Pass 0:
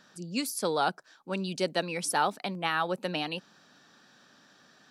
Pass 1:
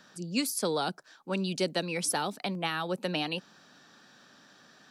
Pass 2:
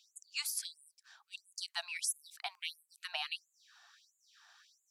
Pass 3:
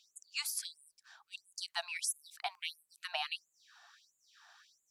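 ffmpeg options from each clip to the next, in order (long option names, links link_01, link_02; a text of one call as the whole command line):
ffmpeg -i in.wav -filter_complex "[0:a]acrossover=split=400|3000[link_01][link_02][link_03];[link_02]acompressor=threshold=-33dB:ratio=6[link_04];[link_01][link_04][link_03]amix=inputs=3:normalize=0,volume=2dB" out.wav
ffmpeg -i in.wav -af "afftfilt=real='re*gte(b*sr/1024,640*pow(6600/640,0.5+0.5*sin(2*PI*1.5*pts/sr)))':imag='im*gte(b*sr/1024,640*pow(6600/640,0.5+0.5*sin(2*PI*1.5*pts/sr)))':win_size=1024:overlap=0.75,volume=-4dB" out.wav
ffmpeg -i in.wav -af "tiltshelf=frequency=930:gain=4.5,volume=4dB" out.wav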